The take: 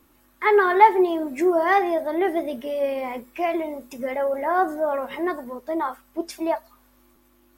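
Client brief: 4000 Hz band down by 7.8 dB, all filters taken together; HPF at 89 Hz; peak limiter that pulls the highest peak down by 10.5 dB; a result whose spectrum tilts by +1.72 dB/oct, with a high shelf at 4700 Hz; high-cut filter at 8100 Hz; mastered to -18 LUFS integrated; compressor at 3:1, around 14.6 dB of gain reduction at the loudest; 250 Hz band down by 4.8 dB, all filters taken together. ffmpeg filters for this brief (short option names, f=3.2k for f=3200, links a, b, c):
-af "highpass=89,lowpass=8.1k,equalizer=f=250:t=o:g=-8.5,equalizer=f=4k:t=o:g=-8,highshelf=f=4.7k:g=-5.5,acompressor=threshold=-29dB:ratio=3,volume=18.5dB,alimiter=limit=-9.5dB:level=0:latency=1"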